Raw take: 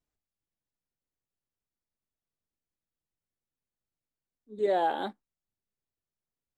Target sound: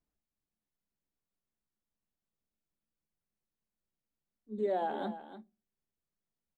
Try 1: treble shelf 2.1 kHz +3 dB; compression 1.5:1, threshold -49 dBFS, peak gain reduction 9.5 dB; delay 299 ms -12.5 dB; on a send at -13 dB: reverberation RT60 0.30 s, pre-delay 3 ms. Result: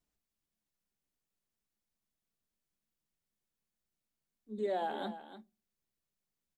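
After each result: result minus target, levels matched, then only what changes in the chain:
4 kHz band +6.5 dB; compression: peak gain reduction +3 dB
change: treble shelf 2.1 kHz -7.5 dB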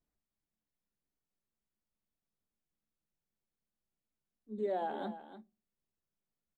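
compression: peak gain reduction +3 dB
change: compression 1.5:1, threshold -40.5 dBFS, peak gain reduction 6.5 dB

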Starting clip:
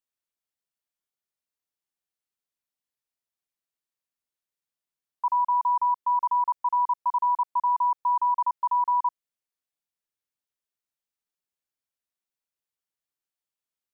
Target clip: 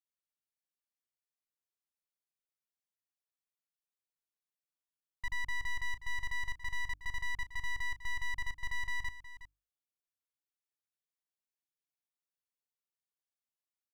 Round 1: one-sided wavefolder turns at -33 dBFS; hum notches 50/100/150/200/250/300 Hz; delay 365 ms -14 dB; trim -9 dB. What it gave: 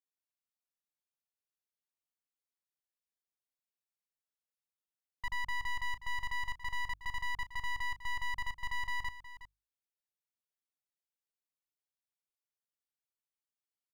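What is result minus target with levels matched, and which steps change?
one-sided wavefolder: distortion -8 dB
change: one-sided wavefolder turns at -40 dBFS

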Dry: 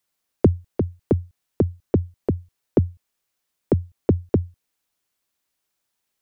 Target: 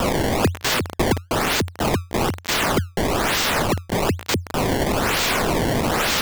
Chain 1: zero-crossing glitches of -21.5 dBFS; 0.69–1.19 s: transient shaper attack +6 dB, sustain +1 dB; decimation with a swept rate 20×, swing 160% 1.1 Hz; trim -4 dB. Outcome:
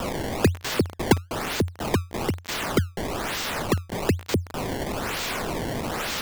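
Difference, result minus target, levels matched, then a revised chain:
zero-crossing glitches: distortion -8 dB
zero-crossing glitches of -13 dBFS; 0.69–1.19 s: transient shaper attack +6 dB, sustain +1 dB; decimation with a swept rate 20×, swing 160% 1.1 Hz; trim -4 dB

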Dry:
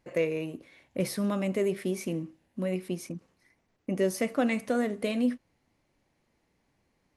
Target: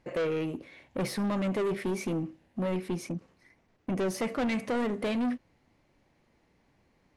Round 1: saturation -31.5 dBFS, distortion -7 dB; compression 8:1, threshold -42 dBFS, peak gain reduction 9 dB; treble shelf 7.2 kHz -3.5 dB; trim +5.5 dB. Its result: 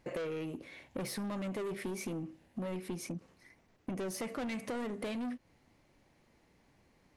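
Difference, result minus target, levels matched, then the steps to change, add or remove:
compression: peak gain reduction +9 dB; 8 kHz band +6.0 dB
change: treble shelf 7.2 kHz -12 dB; remove: compression 8:1, threshold -42 dBFS, peak gain reduction 9 dB

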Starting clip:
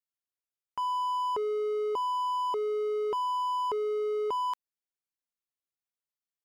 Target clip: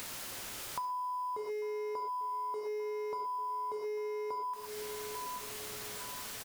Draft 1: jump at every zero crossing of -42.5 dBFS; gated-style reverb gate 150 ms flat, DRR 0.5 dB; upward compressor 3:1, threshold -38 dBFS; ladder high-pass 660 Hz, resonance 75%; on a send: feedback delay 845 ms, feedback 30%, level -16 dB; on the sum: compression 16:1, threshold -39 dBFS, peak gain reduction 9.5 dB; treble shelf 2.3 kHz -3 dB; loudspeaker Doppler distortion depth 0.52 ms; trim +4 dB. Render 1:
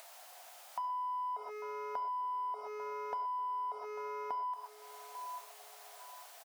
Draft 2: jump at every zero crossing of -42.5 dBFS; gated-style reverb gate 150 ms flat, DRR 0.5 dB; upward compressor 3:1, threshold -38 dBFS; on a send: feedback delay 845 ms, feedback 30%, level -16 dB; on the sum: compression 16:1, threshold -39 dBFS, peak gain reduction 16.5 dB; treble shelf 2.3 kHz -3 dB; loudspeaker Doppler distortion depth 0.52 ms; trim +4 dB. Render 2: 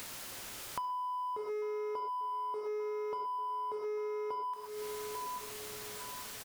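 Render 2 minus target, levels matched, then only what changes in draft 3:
jump at every zero crossing: distortion -8 dB
change: jump at every zero crossing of -33 dBFS

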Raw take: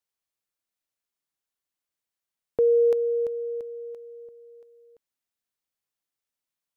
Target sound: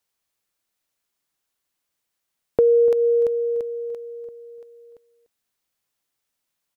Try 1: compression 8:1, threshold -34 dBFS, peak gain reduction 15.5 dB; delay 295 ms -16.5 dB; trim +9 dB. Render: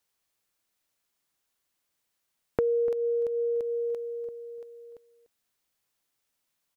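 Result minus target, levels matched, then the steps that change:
compression: peak gain reduction +10 dB
change: compression 8:1, threshold -22.5 dBFS, peak gain reduction 5.5 dB

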